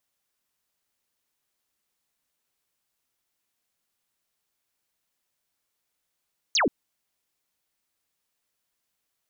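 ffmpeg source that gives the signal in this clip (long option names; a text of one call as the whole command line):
ffmpeg -f lavfi -i "aevalsrc='0.112*clip(t/0.002,0,1)*clip((0.13-t)/0.002,0,1)*sin(2*PI*7000*0.13/log(210/7000)*(exp(log(210/7000)*t/0.13)-1))':duration=0.13:sample_rate=44100" out.wav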